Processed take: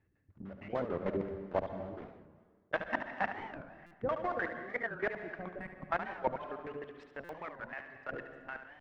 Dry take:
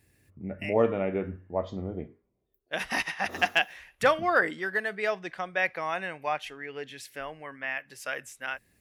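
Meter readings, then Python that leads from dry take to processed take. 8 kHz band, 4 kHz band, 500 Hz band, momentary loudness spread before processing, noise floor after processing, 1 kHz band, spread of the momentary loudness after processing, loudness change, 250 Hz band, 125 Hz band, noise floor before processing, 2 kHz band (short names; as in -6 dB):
under -25 dB, -20.5 dB, -8.0 dB, 14 LU, -69 dBFS, -7.5 dB, 12 LU, -9.0 dB, -6.5 dB, -7.0 dB, -74 dBFS, -10.5 dB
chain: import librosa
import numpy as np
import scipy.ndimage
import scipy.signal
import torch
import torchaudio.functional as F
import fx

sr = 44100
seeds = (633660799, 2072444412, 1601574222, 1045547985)

p1 = fx.block_float(x, sr, bits=3)
p2 = fx.notch(p1, sr, hz=2400.0, q=23.0)
p3 = fx.filter_lfo_lowpass(p2, sr, shape='square', hz=6.6, low_hz=330.0, high_hz=1600.0, q=1.1)
p4 = fx.spec_box(p3, sr, start_s=5.59, length_s=0.32, low_hz=280.0, high_hz=8100.0, gain_db=-18)
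p5 = fx.level_steps(p4, sr, step_db=15)
p6 = fx.dereverb_blind(p5, sr, rt60_s=0.87)
p7 = fx.rider(p6, sr, range_db=4, speed_s=0.5)
p8 = fx.air_absorb(p7, sr, metres=77.0)
p9 = p8 + fx.echo_single(p8, sr, ms=72, db=-9.0, dry=0)
p10 = fx.rev_plate(p9, sr, seeds[0], rt60_s=1.5, hf_ratio=0.8, predelay_ms=115, drr_db=9.0)
p11 = fx.buffer_glitch(p10, sr, at_s=(3.86, 7.24), block=256, repeats=8)
y = fx.record_warp(p11, sr, rpm=45.0, depth_cents=250.0)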